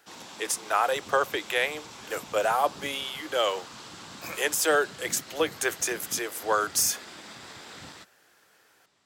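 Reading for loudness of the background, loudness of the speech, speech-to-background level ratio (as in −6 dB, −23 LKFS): −43.5 LKFS, −27.5 LKFS, 16.0 dB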